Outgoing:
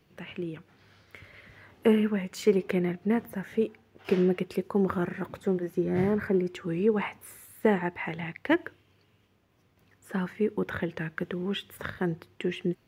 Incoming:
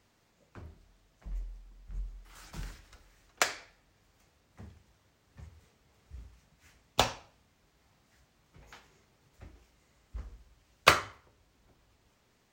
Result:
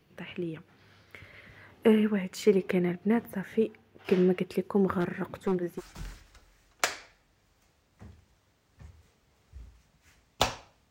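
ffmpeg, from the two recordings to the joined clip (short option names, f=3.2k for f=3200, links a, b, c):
-filter_complex "[0:a]asettb=1/sr,asplit=3[a][b][c];[a]atrim=end=5.004[d];[b]atrim=start=5:end=5.81,asetpts=PTS-STARTPTS,afade=t=in:d=0.004:c=qsin,afade=t=out:st=0.806:d=0.004:c=qsin,aeval=exprs='0.0944*(abs(mod(val(0)/0.0944+3,4)-2)-1)':c=same[e];[c]atrim=start=5.806[f];[d][e]acrossfade=d=0.004:c1=hsin:c2=qsin[g];[g][f]acrossfade=d=0.004:c1=qsin:c2=hsin,apad=whole_dur=10.9,atrim=end=10.9,atrim=end=5.81,asetpts=PTS-STARTPTS[h];[1:a]atrim=start=2.33:end=7.48,asetpts=PTS-STARTPTS[i];[h][i]acrossfade=d=0.06:c1=tri:c2=tri"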